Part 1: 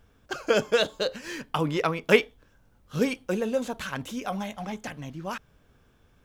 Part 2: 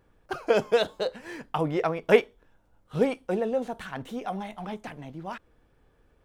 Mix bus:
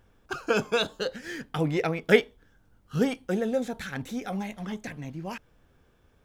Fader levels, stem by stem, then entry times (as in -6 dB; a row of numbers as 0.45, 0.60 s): -4.0, -2.5 dB; 0.00, 0.00 s